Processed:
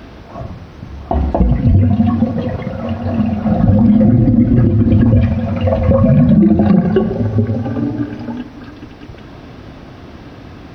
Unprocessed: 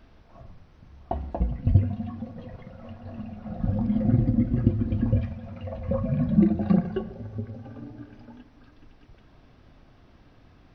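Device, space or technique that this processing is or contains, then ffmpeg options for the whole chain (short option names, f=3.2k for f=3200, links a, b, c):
mastering chain: -af "highpass=60,equalizer=f=330:t=o:w=1.3:g=3,acompressor=threshold=-27dB:ratio=2,alimiter=level_in=22dB:limit=-1dB:release=50:level=0:latency=1,volume=-1dB"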